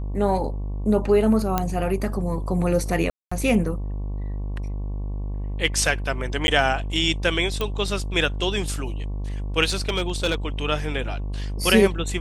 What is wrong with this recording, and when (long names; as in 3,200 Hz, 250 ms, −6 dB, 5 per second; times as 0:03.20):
mains buzz 50 Hz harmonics 23 −28 dBFS
0:01.58: click −7 dBFS
0:03.10–0:03.31: drop-out 215 ms
0:06.47–0:06.48: drop-out 10 ms
0:07.61: click −12 dBFS
0:09.64–0:10.35: clipping −16.5 dBFS